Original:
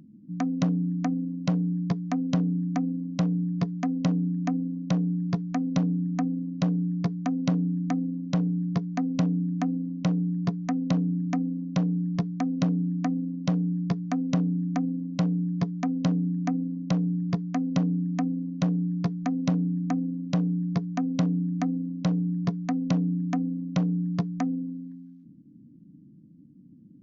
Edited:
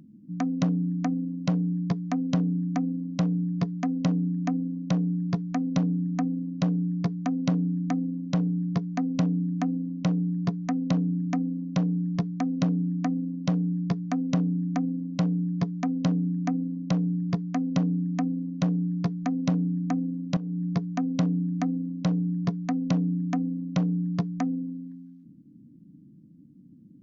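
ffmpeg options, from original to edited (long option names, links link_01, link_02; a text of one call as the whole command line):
ffmpeg -i in.wav -filter_complex "[0:a]asplit=2[link_01][link_02];[link_01]atrim=end=20.37,asetpts=PTS-STARTPTS,afade=type=out:start_time=20.366:duration=0.004:curve=hsin:silence=0.211349[link_03];[link_02]atrim=start=20.37,asetpts=PTS-STARTPTS,afade=type=in:duration=0.29:silence=0.211349[link_04];[link_03][link_04]concat=n=2:v=0:a=1" out.wav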